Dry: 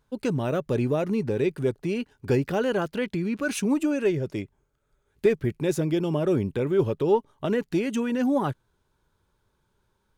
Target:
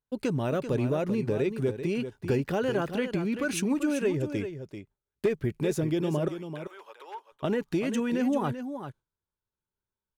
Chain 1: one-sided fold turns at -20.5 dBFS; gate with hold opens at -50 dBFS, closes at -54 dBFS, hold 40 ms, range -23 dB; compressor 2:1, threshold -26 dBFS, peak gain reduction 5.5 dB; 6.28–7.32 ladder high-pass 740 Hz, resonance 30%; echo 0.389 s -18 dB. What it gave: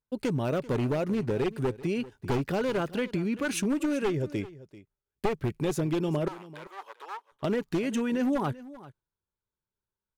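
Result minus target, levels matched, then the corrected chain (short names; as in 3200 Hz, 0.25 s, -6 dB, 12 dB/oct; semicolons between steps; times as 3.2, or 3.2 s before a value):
one-sided fold: distortion +22 dB; echo-to-direct -8.5 dB
one-sided fold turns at -13 dBFS; gate with hold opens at -50 dBFS, closes at -54 dBFS, hold 40 ms, range -23 dB; compressor 2:1, threshold -26 dBFS, peak gain reduction 6 dB; 6.28–7.32 ladder high-pass 740 Hz, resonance 30%; echo 0.389 s -9.5 dB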